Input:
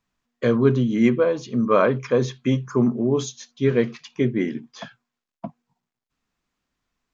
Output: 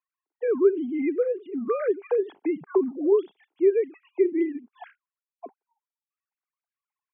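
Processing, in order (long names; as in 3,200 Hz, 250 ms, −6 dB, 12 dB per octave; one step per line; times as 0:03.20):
three sine waves on the formant tracks
downward compressor 5 to 1, threshold −20 dBFS, peak gain reduction 10 dB
loudspeaker in its box 230–2,300 Hz, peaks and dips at 240 Hz −8 dB, 400 Hz +7 dB, 570 Hz −7 dB, 850 Hz +5 dB, 1,200 Hz −6 dB, 1,800 Hz −6 dB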